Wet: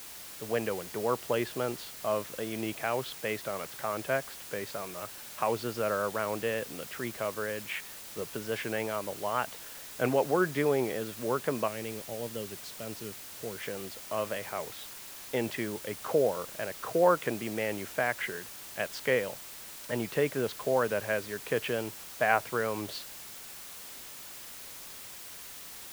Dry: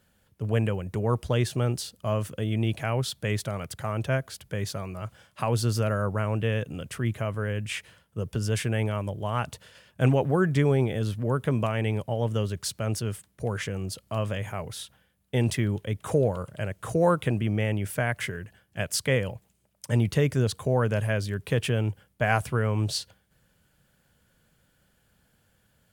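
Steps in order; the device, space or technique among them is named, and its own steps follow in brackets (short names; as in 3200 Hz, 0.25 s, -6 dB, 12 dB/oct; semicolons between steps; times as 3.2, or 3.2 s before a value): 11.68–13.63 bell 1100 Hz -13.5 dB 2.2 oct; wax cylinder (BPF 340–2600 Hz; wow and flutter; white noise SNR 12 dB)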